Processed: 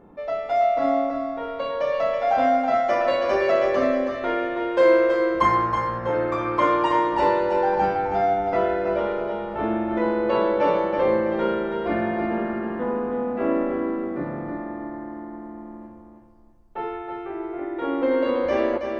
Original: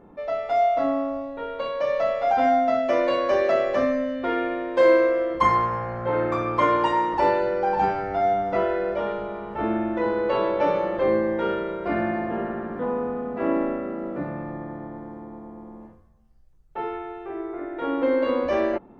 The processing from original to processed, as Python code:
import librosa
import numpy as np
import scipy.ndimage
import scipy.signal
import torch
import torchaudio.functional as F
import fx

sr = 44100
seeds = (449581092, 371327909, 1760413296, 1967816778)

y = fx.doubler(x, sr, ms=13.0, db=-4, at=(2.72, 3.51))
y = fx.echo_feedback(y, sr, ms=324, feedback_pct=31, wet_db=-6.0)